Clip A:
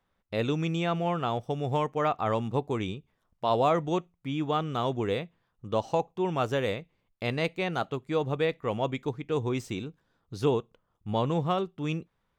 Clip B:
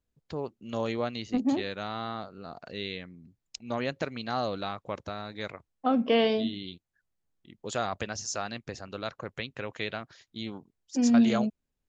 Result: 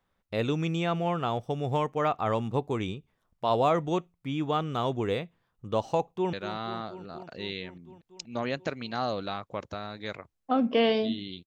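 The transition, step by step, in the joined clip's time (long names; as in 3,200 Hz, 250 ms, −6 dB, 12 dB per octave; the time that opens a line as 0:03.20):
clip A
0:06.03–0:06.33: delay throw 240 ms, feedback 80%, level −12 dB
0:06.33: continue with clip B from 0:01.68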